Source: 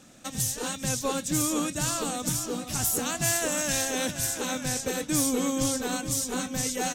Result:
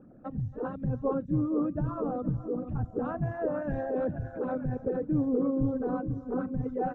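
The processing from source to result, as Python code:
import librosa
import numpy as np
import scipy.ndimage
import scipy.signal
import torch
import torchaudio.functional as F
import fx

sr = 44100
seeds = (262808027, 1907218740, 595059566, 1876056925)

p1 = fx.envelope_sharpen(x, sr, power=2.0)
p2 = scipy.signal.sosfilt(scipy.signal.butter(4, 1300.0, 'lowpass', fs=sr, output='sos'), p1)
y = p2 + fx.echo_single(p2, sr, ms=279, db=-20.0, dry=0)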